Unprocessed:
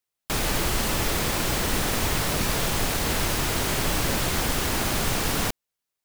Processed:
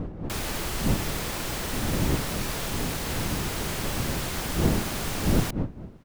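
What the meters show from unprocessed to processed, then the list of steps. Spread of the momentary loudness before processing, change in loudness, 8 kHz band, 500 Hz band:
1 LU, -4.0 dB, -6.0 dB, -3.0 dB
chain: wind noise 220 Hz -24 dBFS; outdoor echo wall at 98 m, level -30 dB; gain -6 dB

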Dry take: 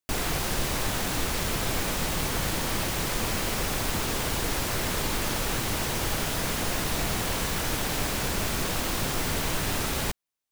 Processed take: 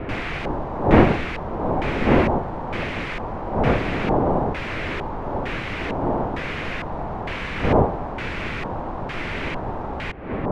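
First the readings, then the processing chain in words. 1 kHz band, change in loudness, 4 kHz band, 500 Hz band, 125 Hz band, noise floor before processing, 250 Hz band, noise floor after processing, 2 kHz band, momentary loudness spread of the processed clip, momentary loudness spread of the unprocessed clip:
+7.5 dB, +4.0 dB, -6.5 dB, +10.0 dB, +6.0 dB, -30 dBFS, +9.5 dB, -30 dBFS, +3.0 dB, 11 LU, 0 LU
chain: wind noise 450 Hz -24 dBFS; LFO low-pass square 1.1 Hz 880–2300 Hz; gain -1 dB

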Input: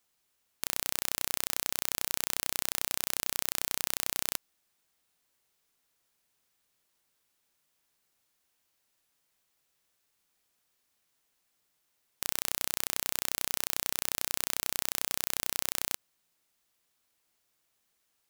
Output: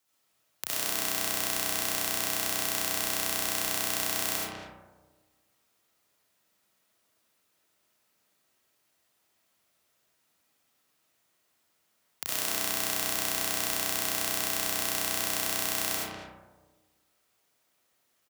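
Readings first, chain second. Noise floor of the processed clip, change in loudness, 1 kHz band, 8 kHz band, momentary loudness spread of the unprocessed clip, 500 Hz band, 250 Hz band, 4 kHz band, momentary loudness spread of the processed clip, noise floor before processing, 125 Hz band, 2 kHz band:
-73 dBFS, +3.0 dB, +6.5 dB, +3.0 dB, 2 LU, +8.0 dB, +8.0 dB, +4.0 dB, 5 LU, -77 dBFS, +4.5 dB, +5.5 dB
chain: frequency shift +62 Hz; speakerphone echo 0.2 s, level -7 dB; digital reverb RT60 1.3 s, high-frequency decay 0.3×, pre-delay 35 ms, DRR -6.5 dB; gain -2 dB

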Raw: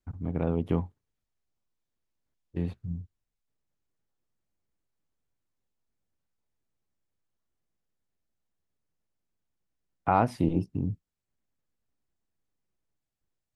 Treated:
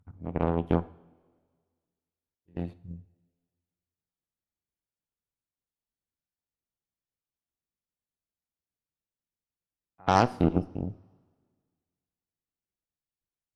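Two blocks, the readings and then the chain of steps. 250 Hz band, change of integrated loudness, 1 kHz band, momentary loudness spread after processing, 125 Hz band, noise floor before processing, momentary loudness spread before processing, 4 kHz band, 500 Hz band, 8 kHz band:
+0.5 dB, +1.5 dB, +1.5 dB, 22 LU, -1.0 dB, -85 dBFS, 15 LU, +11.0 dB, +2.5 dB, n/a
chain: pre-echo 85 ms -20.5 dB; added harmonics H 2 -10 dB, 5 -19 dB, 7 -15 dB, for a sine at -9.5 dBFS; two-slope reverb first 0.54 s, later 1.8 s, from -16 dB, DRR 14.5 dB

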